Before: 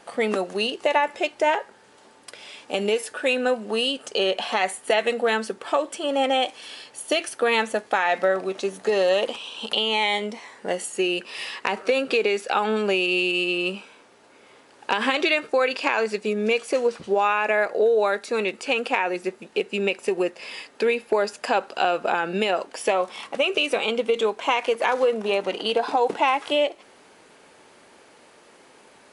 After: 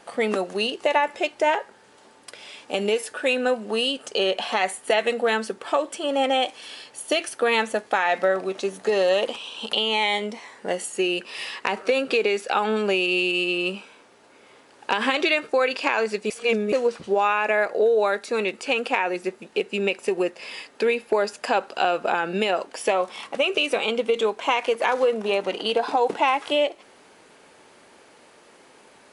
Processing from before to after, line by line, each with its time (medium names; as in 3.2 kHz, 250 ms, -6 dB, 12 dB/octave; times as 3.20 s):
16.30–16.72 s: reverse